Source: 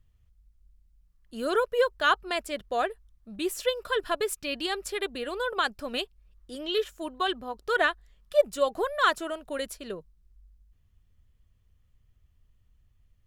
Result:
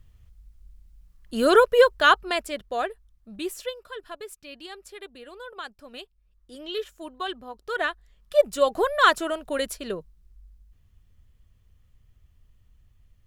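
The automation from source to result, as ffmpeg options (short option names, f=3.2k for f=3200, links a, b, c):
-af "volume=26dB,afade=t=out:st=1.42:d=1.22:silence=0.316228,afade=t=out:st=3.35:d=0.5:silence=0.298538,afade=t=in:st=5.93:d=0.71:silence=0.446684,afade=t=in:st=7.75:d=1.09:silence=0.354813"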